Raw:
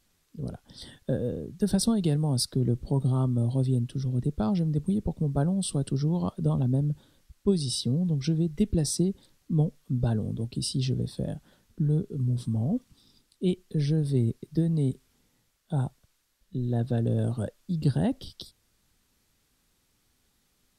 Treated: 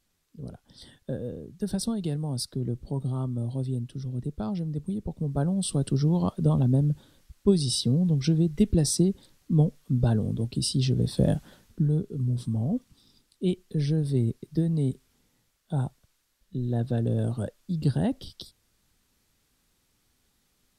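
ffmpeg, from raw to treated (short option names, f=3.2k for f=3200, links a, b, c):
-af "volume=10dB,afade=t=in:st=5.03:d=0.95:silence=0.421697,afade=t=in:st=10.95:d=0.35:silence=0.446684,afade=t=out:st=11.3:d=0.61:silence=0.316228"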